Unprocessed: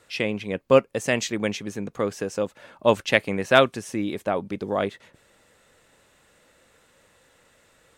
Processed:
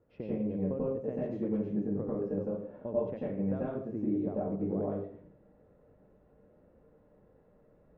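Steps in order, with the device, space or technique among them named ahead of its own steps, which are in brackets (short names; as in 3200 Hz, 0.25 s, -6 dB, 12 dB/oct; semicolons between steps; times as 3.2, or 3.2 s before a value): television next door (compressor 5:1, threshold -29 dBFS, peak gain reduction 16.5 dB; LPF 460 Hz 12 dB/oct; reverb RT60 0.55 s, pre-delay 87 ms, DRR -7 dB); gain -4.5 dB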